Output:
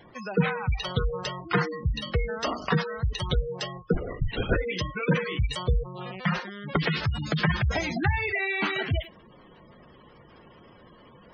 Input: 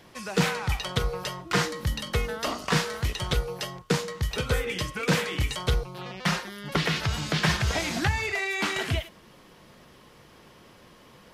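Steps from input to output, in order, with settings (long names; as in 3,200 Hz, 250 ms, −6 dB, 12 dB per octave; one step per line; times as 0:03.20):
0:03.93–0:04.57: linear-prediction vocoder at 8 kHz whisper
gate on every frequency bin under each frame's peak −15 dB strong
level +1.5 dB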